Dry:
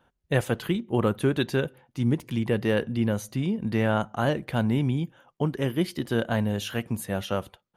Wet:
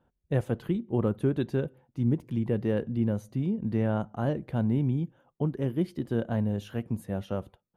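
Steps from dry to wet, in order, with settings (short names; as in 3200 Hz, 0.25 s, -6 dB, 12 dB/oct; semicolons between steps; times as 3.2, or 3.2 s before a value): tilt shelf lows +7.5 dB; gain -8.5 dB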